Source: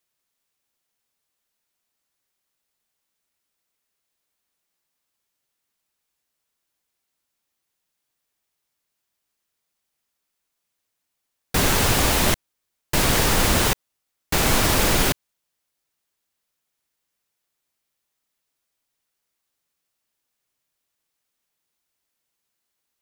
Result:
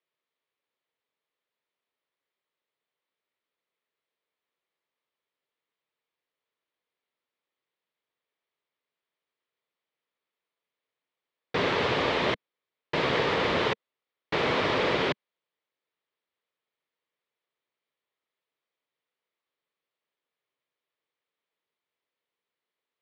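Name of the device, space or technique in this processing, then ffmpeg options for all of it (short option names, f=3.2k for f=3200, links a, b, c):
kitchen radio: -af "highpass=200,equalizer=f=210:t=q:w=4:g=-7,equalizer=f=300:t=q:w=4:g=-4,equalizer=f=460:t=q:w=4:g=4,equalizer=f=770:t=q:w=4:g=-5,equalizer=f=1.5k:t=q:w=4:g=-5,equalizer=f=2.7k:t=q:w=4:g=-4,lowpass=f=3.4k:w=0.5412,lowpass=f=3.4k:w=1.3066,volume=-1.5dB"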